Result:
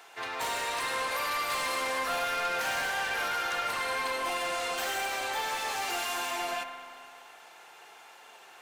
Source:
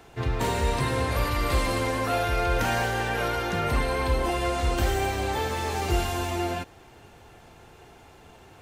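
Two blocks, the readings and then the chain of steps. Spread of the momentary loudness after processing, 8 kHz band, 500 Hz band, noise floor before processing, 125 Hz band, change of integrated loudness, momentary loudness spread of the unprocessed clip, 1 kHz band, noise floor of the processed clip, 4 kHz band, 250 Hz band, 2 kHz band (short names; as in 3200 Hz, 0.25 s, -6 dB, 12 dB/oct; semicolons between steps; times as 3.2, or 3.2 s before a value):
14 LU, 0.0 dB, -8.5 dB, -51 dBFS, -28.5 dB, -4.0 dB, 3 LU, -3.0 dB, -53 dBFS, 0.0 dB, -16.5 dB, 0.0 dB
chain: HPF 880 Hz 12 dB/oct; soft clip -31 dBFS, distortion -12 dB; spring tank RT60 2.1 s, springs 42 ms, chirp 80 ms, DRR 6.5 dB; gain +3 dB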